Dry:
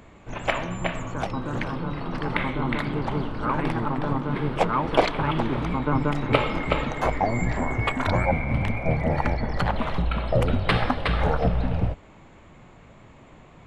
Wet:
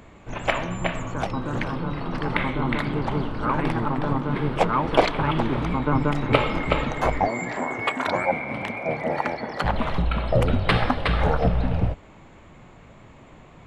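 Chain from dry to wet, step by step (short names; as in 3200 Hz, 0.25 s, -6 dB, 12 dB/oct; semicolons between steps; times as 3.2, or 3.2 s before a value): 7.27–9.64 HPF 280 Hz 12 dB/oct; gain +1.5 dB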